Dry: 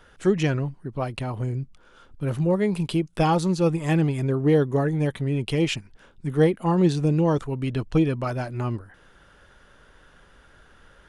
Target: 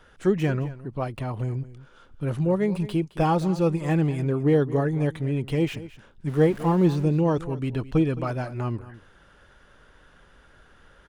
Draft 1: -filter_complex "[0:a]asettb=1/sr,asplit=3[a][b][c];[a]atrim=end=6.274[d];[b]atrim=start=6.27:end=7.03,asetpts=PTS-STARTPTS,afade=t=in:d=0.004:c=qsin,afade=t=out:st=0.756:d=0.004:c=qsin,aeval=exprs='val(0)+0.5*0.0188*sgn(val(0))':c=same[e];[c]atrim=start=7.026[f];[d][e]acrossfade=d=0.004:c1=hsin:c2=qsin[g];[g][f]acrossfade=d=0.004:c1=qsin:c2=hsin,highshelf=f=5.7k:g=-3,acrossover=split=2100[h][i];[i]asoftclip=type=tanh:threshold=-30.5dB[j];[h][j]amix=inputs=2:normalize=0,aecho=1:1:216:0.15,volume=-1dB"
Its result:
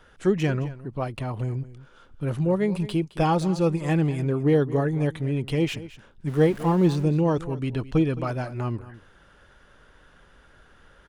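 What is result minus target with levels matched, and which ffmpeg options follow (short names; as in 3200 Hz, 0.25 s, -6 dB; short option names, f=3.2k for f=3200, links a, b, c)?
soft clip: distortion -7 dB
-filter_complex "[0:a]asettb=1/sr,asplit=3[a][b][c];[a]atrim=end=6.274[d];[b]atrim=start=6.27:end=7.03,asetpts=PTS-STARTPTS,afade=t=in:d=0.004:c=qsin,afade=t=out:st=0.756:d=0.004:c=qsin,aeval=exprs='val(0)+0.5*0.0188*sgn(val(0))':c=same[e];[c]atrim=start=7.026[f];[d][e]acrossfade=d=0.004:c1=hsin:c2=qsin[g];[g][f]acrossfade=d=0.004:c1=qsin:c2=hsin,highshelf=f=5.7k:g=-3,acrossover=split=2100[h][i];[i]asoftclip=type=tanh:threshold=-40dB[j];[h][j]amix=inputs=2:normalize=0,aecho=1:1:216:0.15,volume=-1dB"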